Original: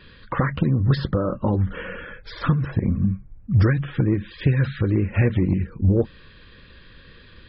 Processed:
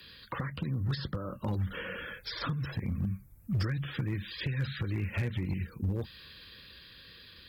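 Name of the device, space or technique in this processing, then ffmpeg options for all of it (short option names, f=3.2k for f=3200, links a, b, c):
FM broadcast chain: -filter_complex "[0:a]highpass=49,dynaudnorm=f=200:g=17:m=6dB,acrossover=split=170|950|2400[a][b][c][d];[a]acompressor=threshold=-17dB:ratio=4[e];[b]acompressor=threshold=-27dB:ratio=4[f];[c]acompressor=threshold=-36dB:ratio=4[g];[d]acompressor=threshold=-46dB:ratio=4[h];[e][f][g][h]amix=inputs=4:normalize=0,aemphasis=mode=production:type=75fm,alimiter=limit=-13.5dB:level=0:latency=1:release=411,asoftclip=type=hard:threshold=-16dB,lowpass=f=15k:w=0.5412,lowpass=f=15k:w=1.3066,aemphasis=mode=production:type=75fm,volume=-8dB"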